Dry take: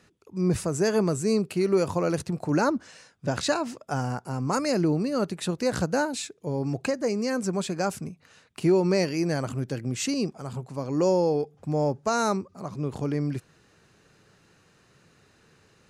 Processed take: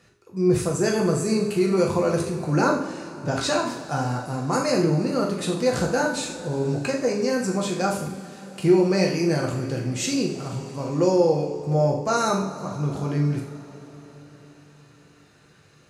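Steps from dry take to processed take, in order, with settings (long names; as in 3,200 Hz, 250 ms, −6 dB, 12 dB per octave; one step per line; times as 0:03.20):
flutter between parallel walls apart 7.1 metres, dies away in 0.26 s
coupled-rooms reverb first 0.54 s, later 4.8 s, from −18 dB, DRR −0.5 dB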